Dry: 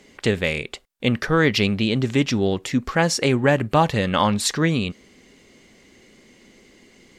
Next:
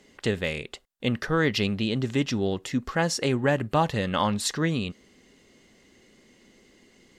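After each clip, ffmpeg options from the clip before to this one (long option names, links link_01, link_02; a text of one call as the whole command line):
ffmpeg -i in.wav -af "bandreject=frequency=2300:width=13,volume=-5.5dB" out.wav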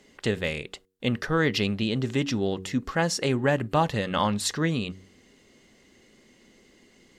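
ffmpeg -i in.wav -af "bandreject=frequency=93.96:width_type=h:width=4,bandreject=frequency=187.92:width_type=h:width=4,bandreject=frequency=281.88:width_type=h:width=4,bandreject=frequency=375.84:width_type=h:width=4,bandreject=frequency=469.8:width_type=h:width=4" out.wav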